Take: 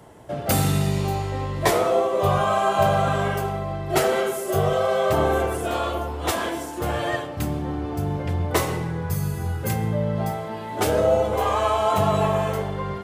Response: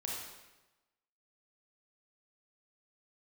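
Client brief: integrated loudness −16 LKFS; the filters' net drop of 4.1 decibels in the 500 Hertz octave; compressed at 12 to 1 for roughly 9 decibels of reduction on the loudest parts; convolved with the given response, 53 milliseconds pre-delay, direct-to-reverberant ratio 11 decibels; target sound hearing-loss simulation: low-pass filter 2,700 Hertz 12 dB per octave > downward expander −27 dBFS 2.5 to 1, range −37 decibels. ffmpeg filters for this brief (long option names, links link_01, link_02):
-filter_complex "[0:a]equalizer=frequency=500:width_type=o:gain=-5.5,acompressor=threshold=-26dB:ratio=12,asplit=2[link_01][link_02];[1:a]atrim=start_sample=2205,adelay=53[link_03];[link_02][link_03]afir=irnorm=-1:irlink=0,volume=-12.5dB[link_04];[link_01][link_04]amix=inputs=2:normalize=0,lowpass=2700,agate=range=-37dB:threshold=-27dB:ratio=2.5,volume=15.5dB"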